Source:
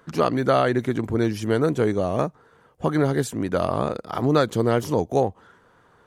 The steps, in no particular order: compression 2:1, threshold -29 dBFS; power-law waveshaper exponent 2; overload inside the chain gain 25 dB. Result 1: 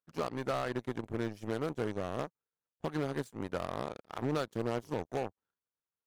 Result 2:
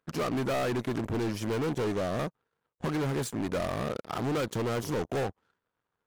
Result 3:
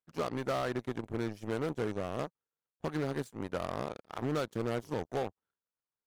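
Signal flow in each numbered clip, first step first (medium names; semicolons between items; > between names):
power-law waveshaper > compression > overload inside the chain; overload inside the chain > power-law waveshaper > compression; power-law waveshaper > overload inside the chain > compression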